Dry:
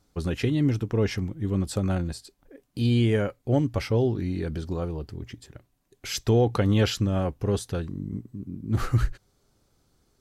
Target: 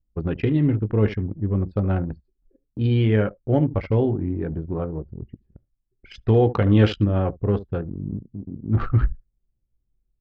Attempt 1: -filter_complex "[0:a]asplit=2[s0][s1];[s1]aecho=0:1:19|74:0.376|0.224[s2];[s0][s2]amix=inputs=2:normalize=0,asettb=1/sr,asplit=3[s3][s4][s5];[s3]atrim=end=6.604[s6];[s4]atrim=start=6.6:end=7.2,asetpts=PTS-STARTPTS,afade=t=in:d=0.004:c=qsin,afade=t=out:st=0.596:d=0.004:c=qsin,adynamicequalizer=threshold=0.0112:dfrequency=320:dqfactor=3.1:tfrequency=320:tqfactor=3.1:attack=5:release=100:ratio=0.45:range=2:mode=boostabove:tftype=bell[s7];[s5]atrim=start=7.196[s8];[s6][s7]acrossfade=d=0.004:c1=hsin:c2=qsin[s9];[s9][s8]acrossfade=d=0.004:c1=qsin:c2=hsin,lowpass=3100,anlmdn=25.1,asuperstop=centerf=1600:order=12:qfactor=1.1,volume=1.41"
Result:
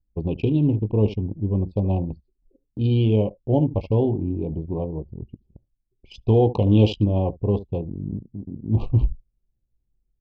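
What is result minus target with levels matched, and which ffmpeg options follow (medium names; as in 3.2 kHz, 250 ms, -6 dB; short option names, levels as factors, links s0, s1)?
2 kHz band -11.0 dB
-filter_complex "[0:a]asplit=2[s0][s1];[s1]aecho=0:1:19|74:0.376|0.224[s2];[s0][s2]amix=inputs=2:normalize=0,asettb=1/sr,asplit=3[s3][s4][s5];[s3]atrim=end=6.604[s6];[s4]atrim=start=6.6:end=7.2,asetpts=PTS-STARTPTS,afade=t=in:d=0.004:c=qsin,afade=t=out:st=0.596:d=0.004:c=qsin,adynamicequalizer=threshold=0.0112:dfrequency=320:dqfactor=3.1:tfrequency=320:tqfactor=3.1:attack=5:release=100:ratio=0.45:range=2:mode=boostabove:tftype=bell[s7];[s5]atrim=start=7.196[s8];[s6][s7]acrossfade=d=0.004:c1=hsin:c2=qsin[s9];[s9][s8]acrossfade=d=0.004:c1=qsin:c2=hsin,lowpass=3100,anlmdn=25.1,volume=1.41"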